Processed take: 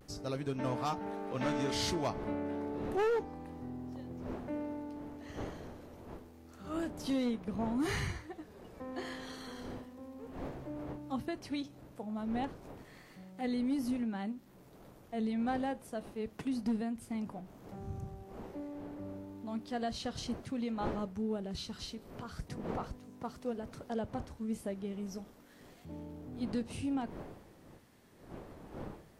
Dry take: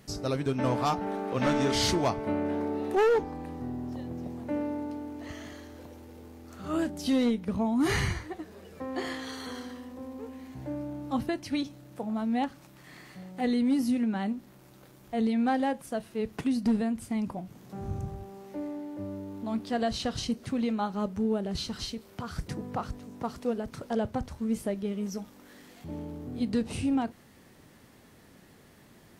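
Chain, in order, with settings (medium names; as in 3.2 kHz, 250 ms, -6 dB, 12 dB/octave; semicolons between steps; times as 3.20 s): wind noise 490 Hz -43 dBFS; vibrato 0.31 Hz 25 cents; trim -7.5 dB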